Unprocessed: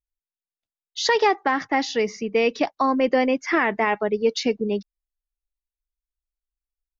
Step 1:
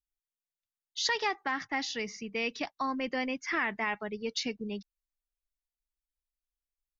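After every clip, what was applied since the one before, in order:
parametric band 480 Hz −11.5 dB 2.2 octaves
level −5 dB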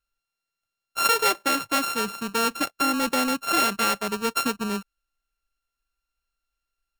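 samples sorted by size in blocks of 32 samples
level +9 dB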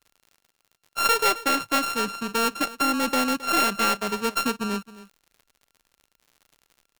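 stylus tracing distortion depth 0.092 ms
surface crackle 75 per second −42 dBFS
single-tap delay 267 ms −17.5 dB

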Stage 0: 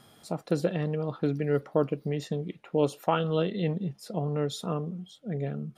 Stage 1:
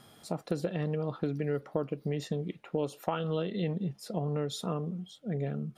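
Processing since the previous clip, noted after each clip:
downward compressor 4 to 1, threshold −28 dBFS, peak gain reduction 8.5 dB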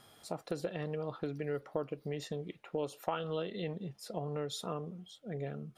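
parametric band 190 Hz −7.5 dB 1.5 octaves
level −2 dB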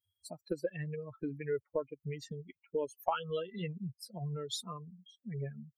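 spectral dynamics exaggerated over time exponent 3
level +6.5 dB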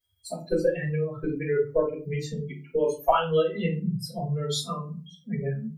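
rectangular room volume 150 cubic metres, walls furnished, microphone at 5.3 metres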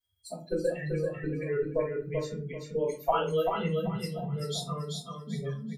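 repeating echo 387 ms, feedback 28%, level −4.5 dB
level −5.5 dB

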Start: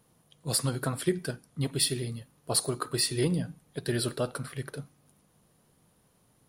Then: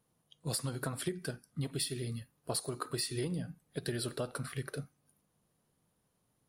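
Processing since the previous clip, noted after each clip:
noise reduction from a noise print of the clip's start 11 dB
downward compressor 5 to 1, threshold −33 dBFS, peak gain reduction 11.5 dB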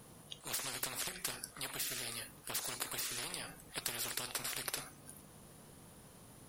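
every bin compressed towards the loudest bin 10 to 1
level +1.5 dB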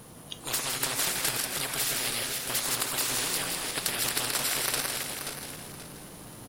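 feedback delay that plays each chunk backwards 265 ms, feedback 54%, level −3 dB
on a send: echo with shifted repeats 161 ms, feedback 36%, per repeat +140 Hz, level −6 dB
on the sum: level +8.5 dB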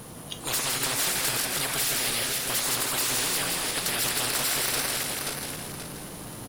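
soft clipping −27.5 dBFS, distortion −11 dB
level +6 dB

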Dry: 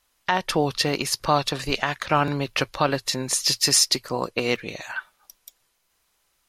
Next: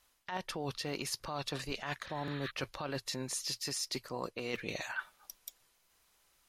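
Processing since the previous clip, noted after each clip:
healed spectral selection 0:02.09–0:02.48, 1,100–4,400 Hz before
brickwall limiter −14.5 dBFS, peak gain reduction 8.5 dB
reversed playback
downward compressor 10 to 1, threshold −33 dBFS, peak gain reduction 13.5 dB
reversed playback
level −1.5 dB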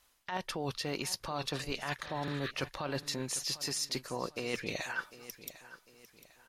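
repeating echo 750 ms, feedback 38%, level −16 dB
level +2 dB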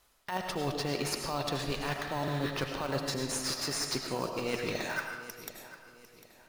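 in parallel at −8 dB: sample-rate reduction 3,600 Hz, jitter 0%
on the sum: comb and all-pass reverb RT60 0.91 s, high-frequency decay 0.75×, pre-delay 60 ms, DRR 3 dB

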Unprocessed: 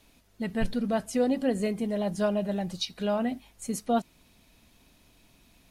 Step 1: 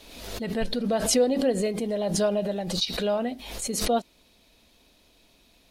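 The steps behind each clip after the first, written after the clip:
octave-band graphic EQ 125/500/4,000 Hz −6/+7/+7 dB
background raised ahead of every attack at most 51 dB per second
level −2 dB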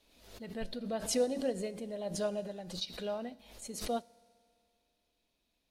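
convolution reverb RT60 2.4 s, pre-delay 3 ms, DRR 14.5 dB
expander for the loud parts 1.5 to 1, over −42 dBFS
level −8 dB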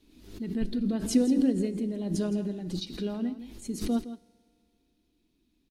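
low shelf with overshoot 430 Hz +9.5 dB, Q 3
single-tap delay 165 ms −13 dB

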